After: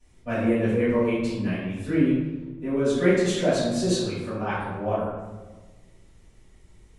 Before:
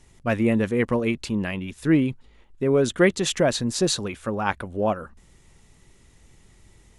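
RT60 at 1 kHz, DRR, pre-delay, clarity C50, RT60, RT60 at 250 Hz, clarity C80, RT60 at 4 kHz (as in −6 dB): 1.2 s, −15.5 dB, 3 ms, −0.5 dB, 1.3 s, 1.6 s, 2.5 dB, 0.75 s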